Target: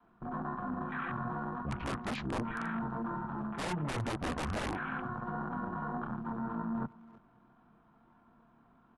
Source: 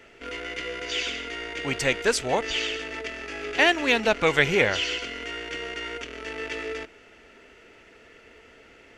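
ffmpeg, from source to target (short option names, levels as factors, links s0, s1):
-filter_complex "[0:a]adynamicequalizer=threshold=0.00891:dfrequency=200:dqfactor=0.88:tfrequency=200:tqfactor=0.88:attack=5:release=100:ratio=0.375:range=2.5:mode=boostabove:tftype=bell,asplit=2[s0][s1];[s1]adelay=27,volume=0.562[s2];[s0][s2]amix=inputs=2:normalize=0,afwtdn=0.0178,aeval=exprs='(mod(5.62*val(0)+1,2)-1)/5.62':c=same,areverse,acompressor=threshold=0.0178:ratio=5,areverse,highshelf=f=4500:g=-12,asplit=2[s3][s4];[s4]adelay=320,highpass=300,lowpass=3400,asoftclip=type=hard:threshold=0.02,volume=0.0891[s5];[s3][s5]amix=inputs=2:normalize=0,asplit=2[s6][s7];[s7]alimiter=level_in=3.16:limit=0.0631:level=0:latency=1:release=157,volume=0.316,volume=1[s8];[s6][s8]amix=inputs=2:normalize=0,asetrate=22696,aresample=44100,atempo=1.94306,volume=0.841"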